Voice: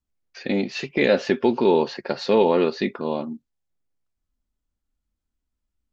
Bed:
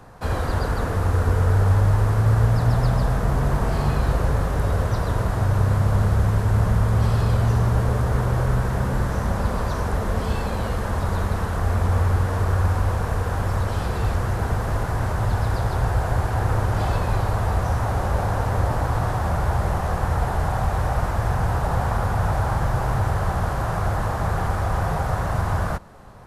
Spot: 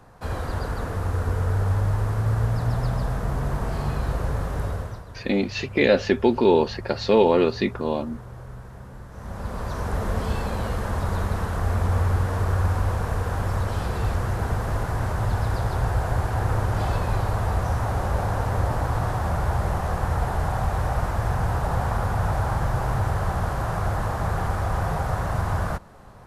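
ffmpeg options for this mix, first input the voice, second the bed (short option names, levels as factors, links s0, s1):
-filter_complex "[0:a]adelay=4800,volume=1.06[s0];[1:a]volume=3.76,afade=t=out:st=4.62:d=0.42:silence=0.211349,afade=t=in:st=9.11:d=0.92:silence=0.149624[s1];[s0][s1]amix=inputs=2:normalize=0"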